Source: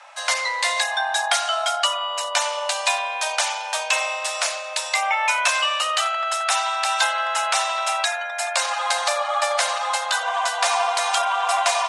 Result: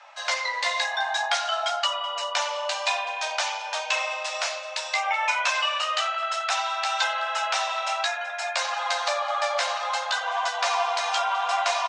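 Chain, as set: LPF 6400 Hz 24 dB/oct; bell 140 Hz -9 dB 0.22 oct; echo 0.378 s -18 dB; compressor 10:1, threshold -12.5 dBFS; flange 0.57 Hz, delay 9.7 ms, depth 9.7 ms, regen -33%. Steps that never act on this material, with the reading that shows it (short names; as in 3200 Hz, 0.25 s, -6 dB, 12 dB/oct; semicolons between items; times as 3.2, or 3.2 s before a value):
bell 140 Hz: input band starts at 480 Hz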